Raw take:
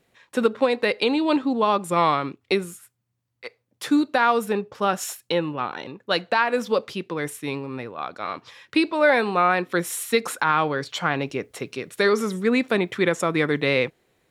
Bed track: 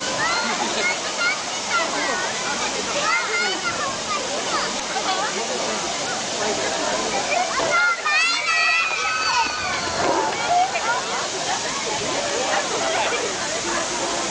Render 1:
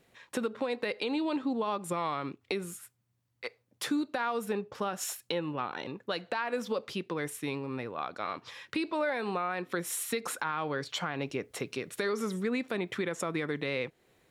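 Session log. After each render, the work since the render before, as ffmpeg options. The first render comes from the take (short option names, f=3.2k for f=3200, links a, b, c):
-af "alimiter=limit=-13.5dB:level=0:latency=1:release=115,acompressor=threshold=-35dB:ratio=2"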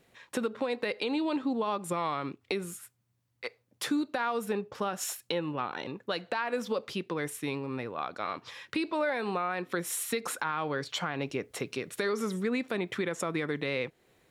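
-af "volume=1dB"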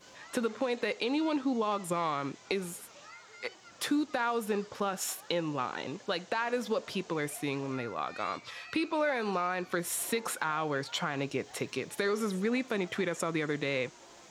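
-filter_complex "[1:a]volume=-30.5dB[a];[0:a][a]amix=inputs=2:normalize=0"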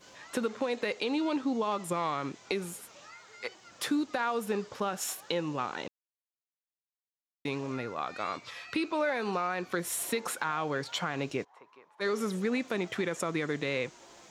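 -filter_complex "[0:a]asplit=3[a][b][c];[a]afade=t=out:st=11.43:d=0.02[d];[b]bandpass=f=980:t=q:w=6.2,afade=t=in:st=11.43:d=0.02,afade=t=out:st=12:d=0.02[e];[c]afade=t=in:st=12:d=0.02[f];[d][e][f]amix=inputs=3:normalize=0,asplit=3[g][h][i];[g]atrim=end=5.88,asetpts=PTS-STARTPTS,afade=t=out:st=5.876:d=0.004:c=hsin[j];[h]atrim=start=5.88:end=7.45,asetpts=PTS-STARTPTS,volume=0[k];[i]atrim=start=7.45,asetpts=PTS-STARTPTS,afade=t=in:d=0.004:c=hsin[l];[j][k][l]concat=n=3:v=0:a=1"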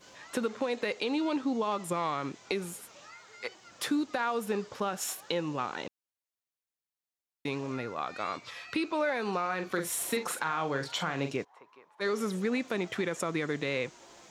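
-filter_complex "[0:a]asettb=1/sr,asplit=3[a][b][c];[a]atrim=end=9.414[d];[b]atrim=start=9.41:end=11.36,asetpts=PTS-STARTPTS,afade=t=in:d=0.004:c=qsin,afade=t=out:st=1.946:d=0.004:c=qsin,asplit=2[e][f];[f]adelay=43,volume=-8dB[g];[e][g]amix=inputs=2:normalize=0,atrim=end_sample=85995[h];[c]atrim=start=11.356[i];[d][h]acrossfade=d=0.004:c1=hsin:c2=qsin[j];[j][i]acrossfade=d=0.004:c1=qsin:c2=hsin"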